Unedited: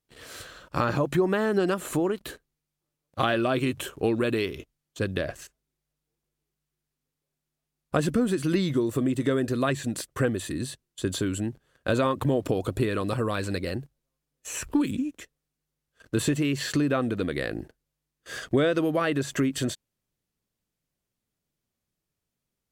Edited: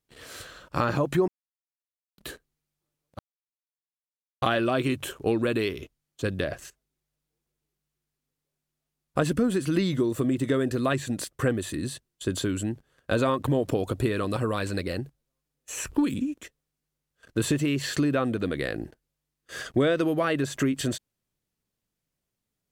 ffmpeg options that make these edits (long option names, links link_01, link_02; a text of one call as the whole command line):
ffmpeg -i in.wav -filter_complex "[0:a]asplit=4[link_01][link_02][link_03][link_04];[link_01]atrim=end=1.28,asetpts=PTS-STARTPTS,afade=type=out:start_time=1.276:duration=0.004:curve=hsin[link_05];[link_02]atrim=start=1.28:end=2.18,asetpts=PTS-STARTPTS,volume=0[link_06];[link_03]atrim=start=2.18:end=3.19,asetpts=PTS-STARTPTS,afade=type=in:duration=0.004:curve=hsin,afade=type=out:start_time=1.006:duration=0.004:curve=hsin,apad=pad_dur=1.23[link_07];[link_04]atrim=start=3.19,asetpts=PTS-STARTPTS,afade=type=in:duration=0.004:curve=hsin[link_08];[link_05][link_06][link_07][link_08]concat=n=4:v=0:a=1" out.wav